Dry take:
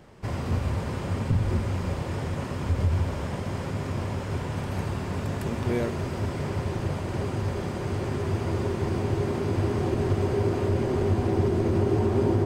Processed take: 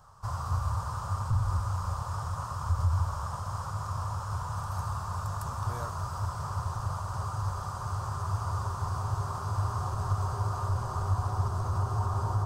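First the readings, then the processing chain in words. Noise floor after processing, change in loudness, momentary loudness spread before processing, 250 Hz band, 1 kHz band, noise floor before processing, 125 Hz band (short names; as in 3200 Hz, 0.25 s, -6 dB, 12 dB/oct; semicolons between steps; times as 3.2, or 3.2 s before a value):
-37 dBFS, -5.0 dB, 7 LU, -18.0 dB, +2.0 dB, -33 dBFS, -3.5 dB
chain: EQ curve 110 Hz 0 dB, 300 Hz -26 dB, 1200 Hz +11 dB, 2100 Hz -19 dB, 5600 Hz +3 dB; gain -2.5 dB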